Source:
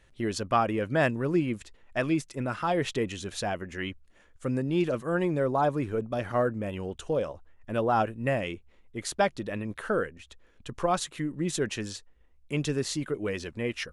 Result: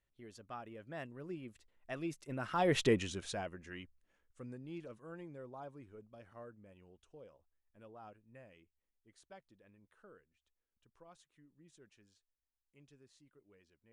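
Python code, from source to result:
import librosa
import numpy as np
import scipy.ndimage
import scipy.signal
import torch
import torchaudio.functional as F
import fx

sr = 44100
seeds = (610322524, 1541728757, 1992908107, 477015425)

y = fx.doppler_pass(x, sr, speed_mps=12, closest_m=2.1, pass_at_s=2.86)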